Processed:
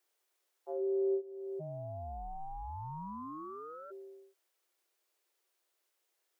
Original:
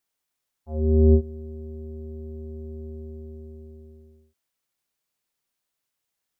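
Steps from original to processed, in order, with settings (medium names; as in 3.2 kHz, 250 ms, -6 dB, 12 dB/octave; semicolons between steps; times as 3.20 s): Chebyshev high-pass 330 Hz, order 8; bass shelf 450 Hz +10 dB; compression 2.5:1, threshold -40 dBFS, peak gain reduction 16.5 dB; 1.59–3.90 s: ring modulator 230 Hz -> 980 Hz; trim +1.5 dB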